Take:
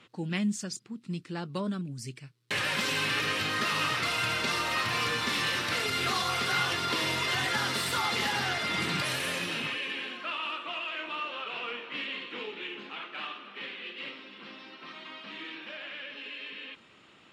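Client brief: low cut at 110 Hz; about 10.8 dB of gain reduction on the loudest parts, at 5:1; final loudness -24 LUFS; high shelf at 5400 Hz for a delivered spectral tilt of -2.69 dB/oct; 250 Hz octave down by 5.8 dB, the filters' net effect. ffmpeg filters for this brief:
-af "highpass=110,equalizer=f=250:t=o:g=-8,highshelf=f=5.4k:g=-5,acompressor=threshold=-39dB:ratio=5,volume=16.5dB"

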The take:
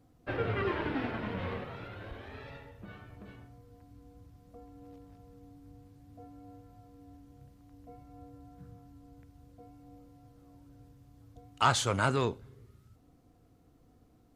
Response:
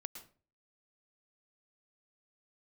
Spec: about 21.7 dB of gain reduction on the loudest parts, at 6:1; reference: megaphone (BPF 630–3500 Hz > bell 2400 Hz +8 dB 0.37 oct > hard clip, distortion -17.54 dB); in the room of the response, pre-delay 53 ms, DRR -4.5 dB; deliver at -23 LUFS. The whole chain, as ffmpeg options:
-filter_complex "[0:a]acompressor=threshold=-45dB:ratio=6,asplit=2[a][b];[1:a]atrim=start_sample=2205,adelay=53[c];[b][c]afir=irnorm=-1:irlink=0,volume=8dB[d];[a][d]amix=inputs=2:normalize=0,highpass=630,lowpass=3.5k,equalizer=f=2.4k:t=o:w=0.37:g=8,asoftclip=type=hard:threshold=-37dB,volume=26dB"

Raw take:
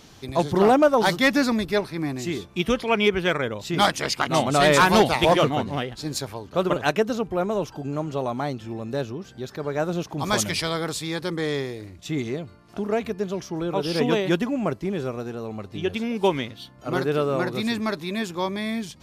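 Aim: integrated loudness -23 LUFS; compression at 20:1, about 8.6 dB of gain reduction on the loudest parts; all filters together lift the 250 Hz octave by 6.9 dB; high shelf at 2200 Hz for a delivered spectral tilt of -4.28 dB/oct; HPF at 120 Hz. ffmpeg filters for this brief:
-af "highpass=120,equalizer=f=250:t=o:g=9,highshelf=f=2.2k:g=9,acompressor=threshold=-17dB:ratio=20,volume=0.5dB"

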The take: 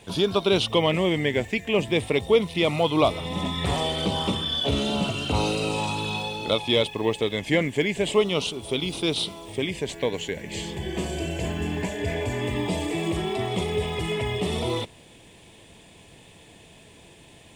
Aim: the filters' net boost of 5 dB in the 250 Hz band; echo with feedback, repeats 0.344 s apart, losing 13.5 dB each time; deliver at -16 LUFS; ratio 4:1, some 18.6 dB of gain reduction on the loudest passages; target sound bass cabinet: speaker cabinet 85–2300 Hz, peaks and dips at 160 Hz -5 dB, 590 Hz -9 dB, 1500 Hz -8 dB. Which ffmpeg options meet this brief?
-af "equalizer=f=250:t=o:g=8.5,acompressor=threshold=-36dB:ratio=4,highpass=f=85:w=0.5412,highpass=f=85:w=1.3066,equalizer=f=160:t=q:w=4:g=-5,equalizer=f=590:t=q:w=4:g=-9,equalizer=f=1.5k:t=q:w=4:g=-8,lowpass=f=2.3k:w=0.5412,lowpass=f=2.3k:w=1.3066,aecho=1:1:344|688:0.211|0.0444,volume=23dB"

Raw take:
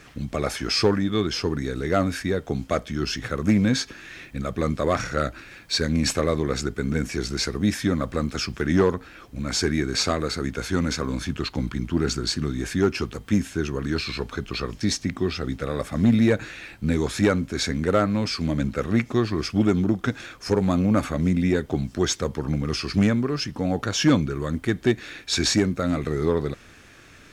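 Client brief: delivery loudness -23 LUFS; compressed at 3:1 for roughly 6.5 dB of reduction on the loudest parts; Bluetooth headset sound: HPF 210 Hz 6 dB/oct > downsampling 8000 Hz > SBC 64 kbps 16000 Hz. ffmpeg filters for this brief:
-af "acompressor=threshold=-23dB:ratio=3,highpass=f=210:p=1,aresample=8000,aresample=44100,volume=8dB" -ar 16000 -c:a sbc -b:a 64k

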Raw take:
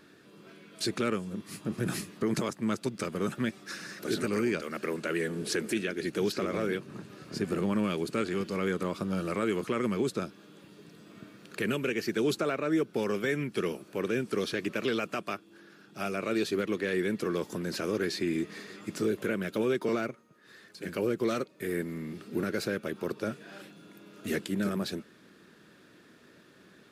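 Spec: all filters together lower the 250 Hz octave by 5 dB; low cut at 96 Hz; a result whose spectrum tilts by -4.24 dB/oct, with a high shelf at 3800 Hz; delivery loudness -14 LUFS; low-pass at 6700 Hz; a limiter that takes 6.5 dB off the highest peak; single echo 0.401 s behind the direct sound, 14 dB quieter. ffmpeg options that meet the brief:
-af "highpass=96,lowpass=6.7k,equalizer=f=250:t=o:g=-7,highshelf=f=3.8k:g=-5.5,alimiter=level_in=2dB:limit=-24dB:level=0:latency=1,volume=-2dB,aecho=1:1:401:0.2,volume=23.5dB"

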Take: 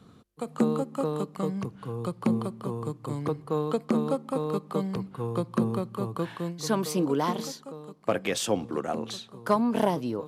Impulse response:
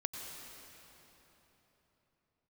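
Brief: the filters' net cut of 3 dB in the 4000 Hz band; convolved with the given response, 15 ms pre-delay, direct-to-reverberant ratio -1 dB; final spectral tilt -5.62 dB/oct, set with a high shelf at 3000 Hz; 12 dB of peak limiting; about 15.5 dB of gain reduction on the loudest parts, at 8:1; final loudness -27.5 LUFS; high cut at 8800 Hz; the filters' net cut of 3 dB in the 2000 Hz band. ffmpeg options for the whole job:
-filter_complex "[0:a]lowpass=8.8k,equalizer=f=2k:t=o:g=-4.5,highshelf=f=3k:g=6.5,equalizer=f=4k:t=o:g=-7.5,acompressor=threshold=-36dB:ratio=8,alimiter=level_in=8dB:limit=-24dB:level=0:latency=1,volume=-8dB,asplit=2[a][b];[1:a]atrim=start_sample=2205,adelay=15[c];[b][c]afir=irnorm=-1:irlink=0,volume=0dB[d];[a][d]amix=inputs=2:normalize=0,volume=11.5dB"

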